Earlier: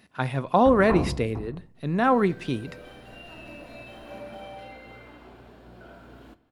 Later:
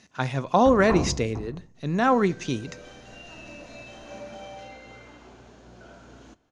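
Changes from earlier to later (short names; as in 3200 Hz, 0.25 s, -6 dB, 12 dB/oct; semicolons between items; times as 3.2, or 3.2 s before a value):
second sound: send -7.0 dB; master: add synth low-pass 6400 Hz, resonance Q 8.3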